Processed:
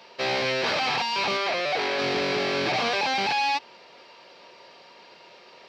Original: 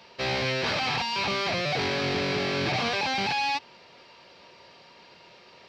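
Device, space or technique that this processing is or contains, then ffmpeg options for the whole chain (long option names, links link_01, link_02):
filter by subtraction: -filter_complex "[0:a]asplit=2[link_01][link_02];[link_02]lowpass=480,volume=-1[link_03];[link_01][link_03]amix=inputs=2:normalize=0,asettb=1/sr,asplit=3[link_04][link_05][link_06];[link_04]atrim=end=1.374[link_07];[link_05]atrim=start=1.37:end=1.99,asetpts=PTS-STARTPTS,afade=type=in:duration=0.004:curve=qsin,afade=type=out:start_time=0.616:duration=0.004:curve=qsin,bass=frequency=250:gain=-11,treble=frequency=4000:gain=-4[link_08];[link_06]atrim=start=1.986[link_09];[link_07][link_08]acrossfade=duration=0.004:curve1=hsin:curve2=qsin[link_10];[link_10][link_09]acrossfade=duration=0.004:curve1=qsin:curve2=hsin,volume=1.5dB"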